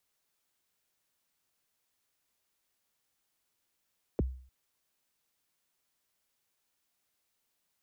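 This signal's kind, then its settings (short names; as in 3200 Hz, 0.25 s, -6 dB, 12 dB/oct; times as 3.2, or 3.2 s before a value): kick drum length 0.30 s, from 560 Hz, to 64 Hz, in 23 ms, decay 0.49 s, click off, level -23 dB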